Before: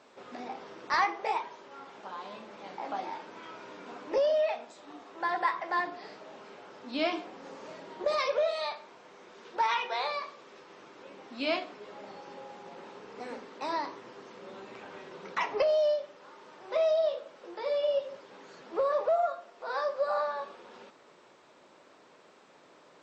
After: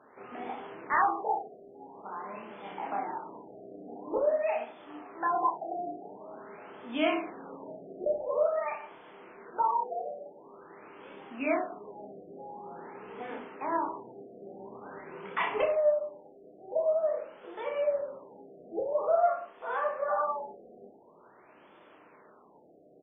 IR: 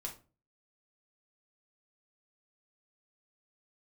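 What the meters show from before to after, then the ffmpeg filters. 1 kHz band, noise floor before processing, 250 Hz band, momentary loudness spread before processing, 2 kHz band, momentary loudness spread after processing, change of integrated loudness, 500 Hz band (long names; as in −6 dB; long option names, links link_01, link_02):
+1.5 dB, −59 dBFS, +3.0 dB, 20 LU, −2.0 dB, 20 LU, −0.5 dB, 0.0 dB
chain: -af "bandreject=frequency=550:width=12,aecho=1:1:30|63|99.3|139.2|183.2:0.631|0.398|0.251|0.158|0.1,afftfilt=real='re*lt(b*sr/1024,750*pow(3600/750,0.5+0.5*sin(2*PI*0.47*pts/sr)))':imag='im*lt(b*sr/1024,750*pow(3600/750,0.5+0.5*sin(2*PI*0.47*pts/sr)))':win_size=1024:overlap=0.75"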